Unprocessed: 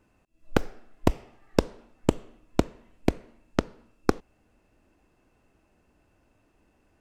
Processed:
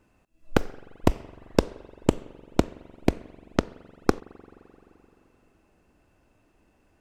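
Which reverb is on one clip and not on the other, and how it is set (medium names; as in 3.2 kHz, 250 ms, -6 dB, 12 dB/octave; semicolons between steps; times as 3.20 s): spring tank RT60 3.5 s, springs 43 ms, chirp 30 ms, DRR 20 dB; trim +1.5 dB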